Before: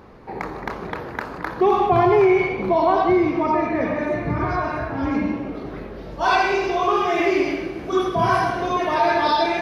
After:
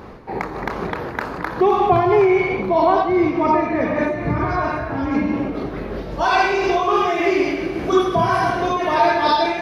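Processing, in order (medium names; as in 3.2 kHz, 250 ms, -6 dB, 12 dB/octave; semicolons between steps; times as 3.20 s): in parallel at +0.5 dB: compression, threshold -27 dBFS, peak gain reduction 14 dB; on the sum: random flutter of the level, depth 60%; trim +2.5 dB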